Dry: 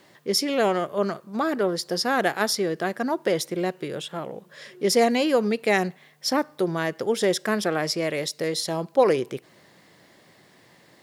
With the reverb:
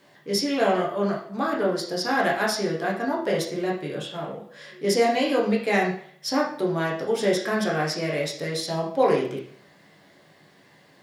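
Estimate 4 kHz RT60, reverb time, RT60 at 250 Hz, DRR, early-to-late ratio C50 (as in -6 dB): 0.50 s, 0.55 s, 0.55 s, -3.5 dB, 5.5 dB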